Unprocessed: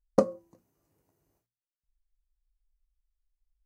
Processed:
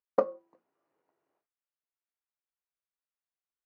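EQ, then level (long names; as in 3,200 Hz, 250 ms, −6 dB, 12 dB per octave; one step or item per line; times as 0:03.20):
band-pass filter 460–2,600 Hz
high-frequency loss of the air 92 metres
parametric band 1,300 Hz +2.5 dB
0.0 dB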